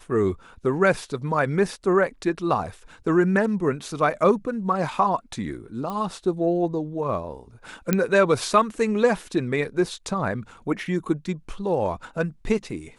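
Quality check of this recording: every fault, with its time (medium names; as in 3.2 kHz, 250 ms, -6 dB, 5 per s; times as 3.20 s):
5.90 s: pop -19 dBFS
7.93 s: pop -6 dBFS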